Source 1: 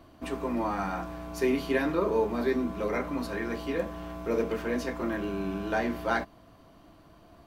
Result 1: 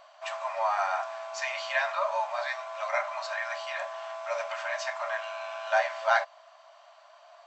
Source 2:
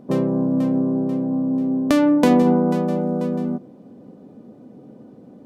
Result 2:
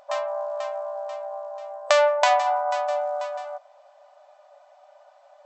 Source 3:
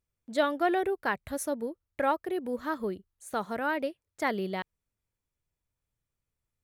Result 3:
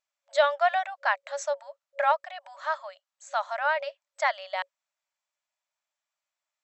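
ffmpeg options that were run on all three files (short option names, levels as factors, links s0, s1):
-af "afftfilt=real='re*between(b*sr/4096,550,8000)':imag='im*between(b*sr/4096,550,8000)':win_size=4096:overlap=0.75,volume=1.78"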